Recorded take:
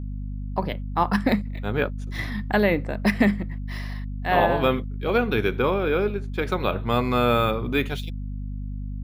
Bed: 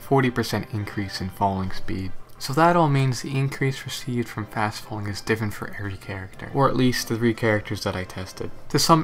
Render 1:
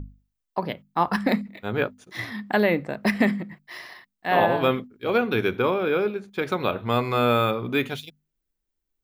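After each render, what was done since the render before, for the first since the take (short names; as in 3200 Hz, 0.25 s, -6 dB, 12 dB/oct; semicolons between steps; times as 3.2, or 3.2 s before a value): notches 50/100/150/200/250 Hz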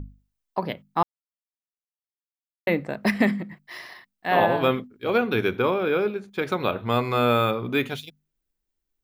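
1.03–2.67 mute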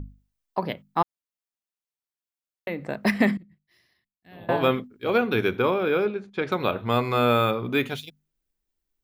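1.02–2.85 compressor 2:1, threshold -32 dBFS; 3.37–4.49 passive tone stack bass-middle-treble 10-0-1; 6.05–6.52 air absorption 84 m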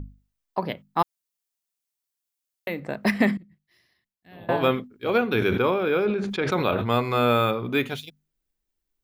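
0.99–2.8 high shelf 3700 Hz +10 dB; 5.32–6.96 sustainer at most 35 dB/s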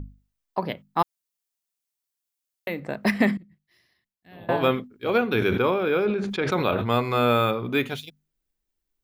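nothing audible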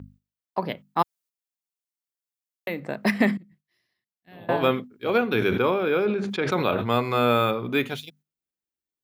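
HPF 100 Hz 12 dB/oct; gate -55 dBFS, range -9 dB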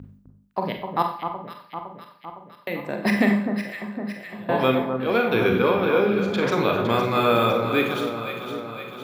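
on a send: echo with dull and thin repeats by turns 0.255 s, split 1400 Hz, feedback 77%, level -6.5 dB; on the sum: Schroeder reverb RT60 0.5 s, combs from 31 ms, DRR 4 dB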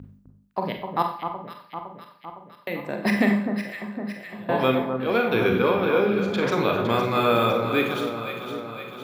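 gain -1 dB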